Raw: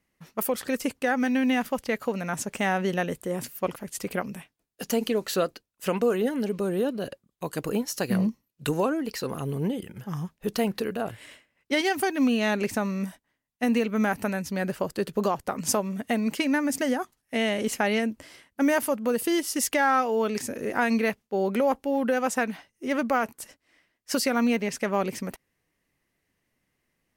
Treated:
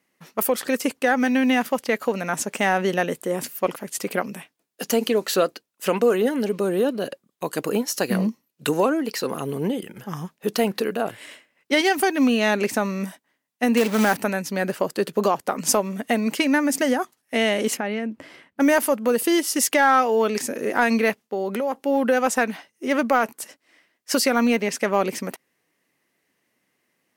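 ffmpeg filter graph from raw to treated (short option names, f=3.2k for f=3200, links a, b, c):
-filter_complex "[0:a]asettb=1/sr,asplit=3[a][b][c];[a]atrim=end=13.774[d];[b]atrim=start=13.77:end=14.17,asetpts=PTS-STARTPTS,afade=t=in:d=0.004:c=qsin,afade=t=out:st=0.396:d=0.004:c=qsin,aeval=exprs='val(0)+0.5*0.0224*sgn(val(0))':c=same,acrusher=bits=3:mode=log:mix=0:aa=0.000001[e];[c]atrim=start=14.166[f];[d][e]acrossfade=d=0.004:c1=hsin:c2=qsin[g];[g][f]acrossfade=d=0.004:c1=qsin:c2=hsin,asettb=1/sr,asplit=3[h][i][j];[h]atrim=end=17.774[k];[i]atrim=start=17.77:end=18.6,asetpts=PTS-STARTPTS,afade=t=in:d=0.004:c=qsin,afade=t=out:st=0.826:d=0.004:c=qsin,bass=f=250:g=7,treble=f=4k:g=-13,acompressor=threshold=-31dB:ratio=2.5:attack=3.2:release=140:knee=1:detection=peak[l];[j]atrim=start=18.596[m];[k][l]acrossfade=d=0.004:c1=hsin:c2=qsin[n];[n][m]acrossfade=d=0.004:c1=qsin:c2=hsin,asettb=1/sr,asplit=3[o][p][q];[o]atrim=end=21.214[r];[p]atrim=start=21.21:end=21.82,asetpts=PTS-STARTPTS,afade=t=in:d=0.004:c=qsin,afade=t=out:st=0.606:d=0.004:c=qsin,bandreject=f=2.3k:w=20,acompressor=threshold=-28dB:ratio=3:attack=3.2:release=140:knee=1:detection=peak[s];[q]atrim=start=21.816[t];[r][s]acrossfade=d=0.004:c1=hsin:c2=qsin[u];[u][t]acrossfade=d=0.004:c1=qsin:c2=hsin,highpass=220,acontrast=76,volume=-1dB"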